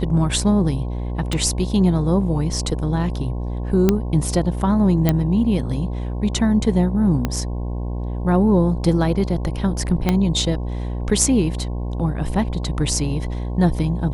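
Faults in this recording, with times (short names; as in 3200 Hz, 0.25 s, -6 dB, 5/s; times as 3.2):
buzz 60 Hz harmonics 18 -25 dBFS
1.33 pop -11 dBFS
3.89 pop -3 dBFS
5.09 pop -4 dBFS
7.25 pop -8 dBFS
10.09 pop -5 dBFS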